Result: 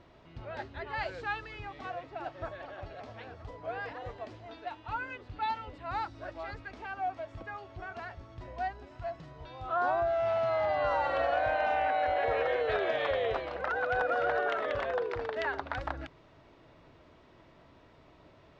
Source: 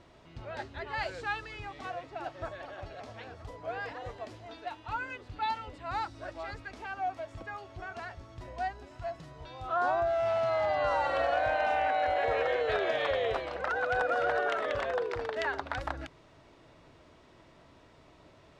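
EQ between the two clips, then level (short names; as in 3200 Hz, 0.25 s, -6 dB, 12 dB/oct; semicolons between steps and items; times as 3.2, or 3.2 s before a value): air absorption 110 m; 0.0 dB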